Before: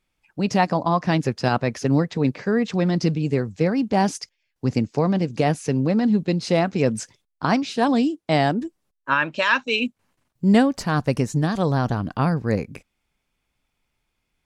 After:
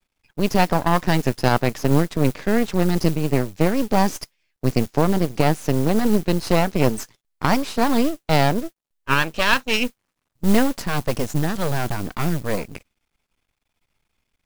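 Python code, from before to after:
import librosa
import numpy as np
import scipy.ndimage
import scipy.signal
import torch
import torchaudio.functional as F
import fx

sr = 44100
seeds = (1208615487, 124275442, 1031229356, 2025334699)

y = fx.mod_noise(x, sr, seeds[0], snr_db=20)
y = np.maximum(y, 0.0)
y = F.gain(torch.from_numpy(y), 4.5).numpy()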